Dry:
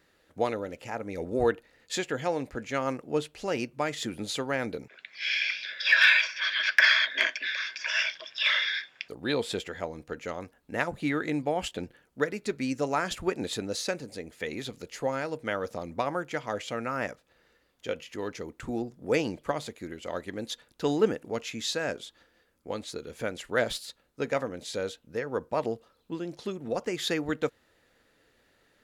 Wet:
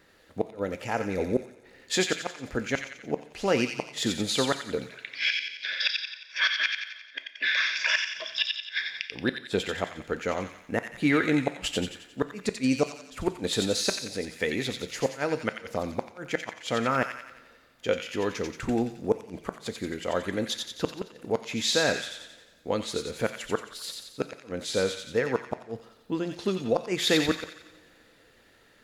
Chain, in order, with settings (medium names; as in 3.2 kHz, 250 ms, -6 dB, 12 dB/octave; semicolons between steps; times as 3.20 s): treble shelf 4 kHz -2.5 dB; inverted gate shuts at -18 dBFS, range -37 dB; feedback echo behind a high-pass 89 ms, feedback 52%, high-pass 2 kHz, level -3 dB; on a send at -11.5 dB: reverberation, pre-delay 3 ms; on the sum: trim +6 dB